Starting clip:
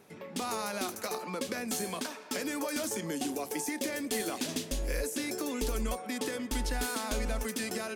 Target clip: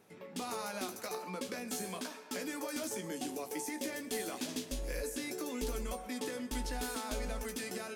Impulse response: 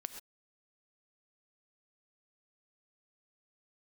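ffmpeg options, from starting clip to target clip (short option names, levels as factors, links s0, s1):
-filter_complex "[0:a]asplit=2[s0][s1];[1:a]atrim=start_sample=2205,adelay=16[s2];[s1][s2]afir=irnorm=-1:irlink=0,volume=0.596[s3];[s0][s3]amix=inputs=2:normalize=0,volume=0.501"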